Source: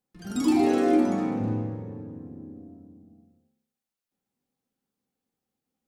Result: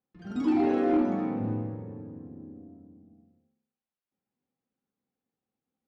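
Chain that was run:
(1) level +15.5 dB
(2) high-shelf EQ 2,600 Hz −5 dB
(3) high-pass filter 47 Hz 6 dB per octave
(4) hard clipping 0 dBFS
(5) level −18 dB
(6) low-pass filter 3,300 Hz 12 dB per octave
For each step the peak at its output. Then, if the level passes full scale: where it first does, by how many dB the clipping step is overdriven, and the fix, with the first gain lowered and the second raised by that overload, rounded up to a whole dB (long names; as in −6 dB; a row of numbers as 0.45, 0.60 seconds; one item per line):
+4.5, +4.5, +4.5, 0.0, −18.0, −18.0 dBFS
step 1, 4.5 dB
step 1 +10.5 dB, step 5 −13 dB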